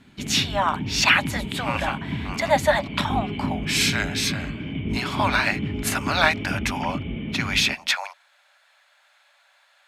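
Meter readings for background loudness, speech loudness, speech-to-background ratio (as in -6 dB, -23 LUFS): -30.0 LUFS, -23.5 LUFS, 6.5 dB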